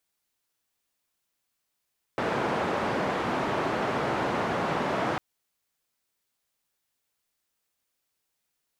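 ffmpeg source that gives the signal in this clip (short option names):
-f lavfi -i "anoisesrc=c=white:d=3:r=44100:seed=1,highpass=f=130,lowpass=f=1000,volume=-9.6dB"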